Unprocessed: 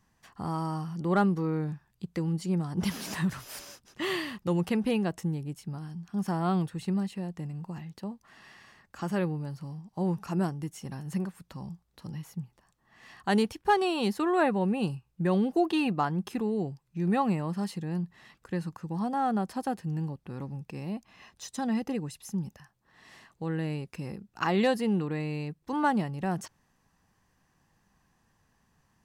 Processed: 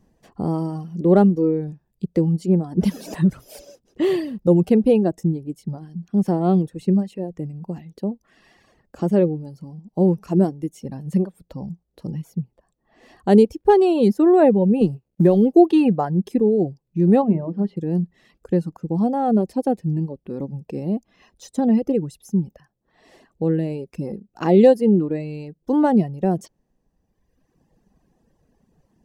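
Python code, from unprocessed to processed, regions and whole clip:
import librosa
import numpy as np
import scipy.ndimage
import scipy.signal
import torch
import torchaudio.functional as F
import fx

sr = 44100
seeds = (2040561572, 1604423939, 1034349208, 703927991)

y = fx.chain(x, sr, fx.law_mismatch(coded='A'),
    fx.band_squash(depth_pct=70), at=(14.81, 15.54))
y = fx.air_absorb(y, sr, metres=400.0, at=(17.21, 17.76), fade=0.02)
y = fx.hum_notches(y, sr, base_hz=60, count=8, at=(17.21, 17.76), fade=0.02)
y = fx.dmg_buzz(y, sr, base_hz=400.0, harmonics=13, level_db=-66.0, tilt_db=-6, odd_only=False, at=(17.21, 17.76), fade=0.02)
y = fx.peak_eq(y, sr, hz=99.0, db=-7.5, octaves=0.99)
y = fx.dereverb_blind(y, sr, rt60_s=1.5)
y = fx.low_shelf_res(y, sr, hz=780.0, db=13.0, q=1.5)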